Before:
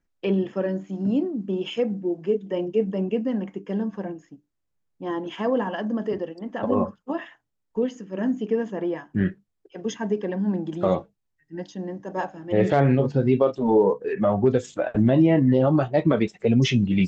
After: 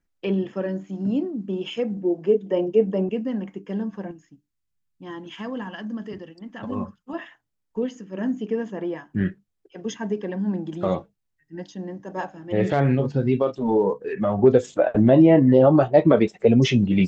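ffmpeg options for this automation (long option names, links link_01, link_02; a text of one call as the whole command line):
ffmpeg -i in.wav -af "asetnsamples=nb_out_samples=441:pad=0,asendcmd='1.97 equalizer g 5;3.09 equalizer g -3;4.11 equalizer g -12.5;7.13 equalizer g -2.5;14.39 equalizer g 6.5',equalizer=frequency=560:width_type=o:width=1.9:gain=-2" out.wav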